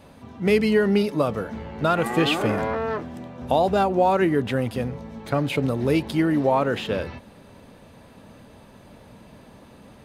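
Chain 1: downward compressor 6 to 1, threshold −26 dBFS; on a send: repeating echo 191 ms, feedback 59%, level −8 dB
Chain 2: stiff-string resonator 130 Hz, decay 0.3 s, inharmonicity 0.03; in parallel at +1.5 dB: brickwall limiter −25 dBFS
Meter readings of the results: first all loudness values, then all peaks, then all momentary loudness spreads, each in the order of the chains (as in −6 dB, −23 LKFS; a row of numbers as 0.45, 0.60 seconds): −30.0, −28.0 LKFS; −11.0, −13.0 dBFS; 19, 9 LU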